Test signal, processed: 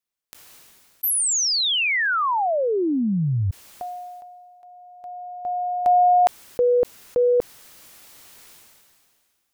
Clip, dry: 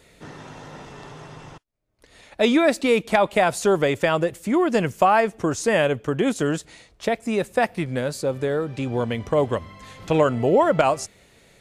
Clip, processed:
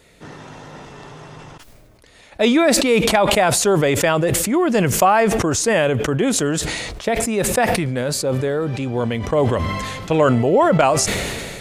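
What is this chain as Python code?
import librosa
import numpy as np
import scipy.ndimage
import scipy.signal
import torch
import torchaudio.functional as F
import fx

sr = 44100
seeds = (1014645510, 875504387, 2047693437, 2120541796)

y = fx.sustainer(x, sr, db_per_s=27.0)
y = y * 10.0 ** (2.0 / 20.0)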